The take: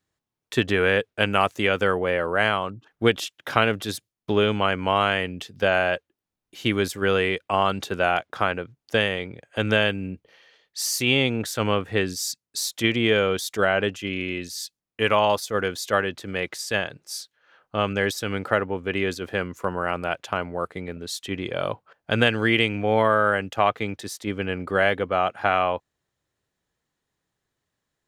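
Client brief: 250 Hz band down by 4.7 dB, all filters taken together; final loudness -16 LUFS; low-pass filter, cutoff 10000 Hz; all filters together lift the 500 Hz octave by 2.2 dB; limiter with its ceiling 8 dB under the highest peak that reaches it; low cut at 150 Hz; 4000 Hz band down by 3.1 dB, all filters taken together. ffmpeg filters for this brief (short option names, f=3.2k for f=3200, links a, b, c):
-af "highpass=150,lowpass=10k,equalizer=f=250:t=o:g=-7.5,equalizer=f=500:t=o:g=4.5,equalizer=f=4k:t=o:g=-4.5,volume=9dB,alimiter=limit=-1dB:level=0:latency=1"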